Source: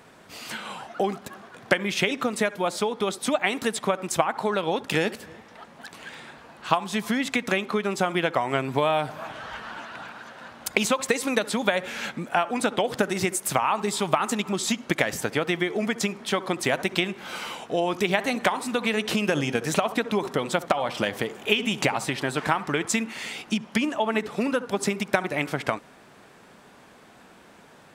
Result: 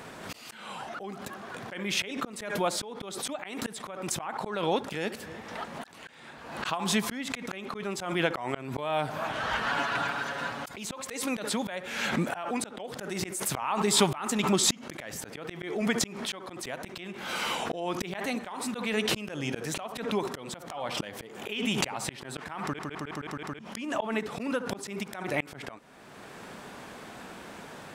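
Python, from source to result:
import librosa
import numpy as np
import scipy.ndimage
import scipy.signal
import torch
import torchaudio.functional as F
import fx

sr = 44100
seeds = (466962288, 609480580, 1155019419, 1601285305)

y = fx.comb(x, sr, ms=7.1, depth=0.76, at=(9.66, 10.74))
y = fx.edit(y, sr, fx.stutter_over(start_s=22.63, slice_s=0.16, count=6), tone=tone)
y = fx.auto_swell(y, sr, attack_ms=735.0)
y = fx.pre_swell(y, sr, db_per_s=59.0)
y = y * 10.0 ** (7.0 / 20.0)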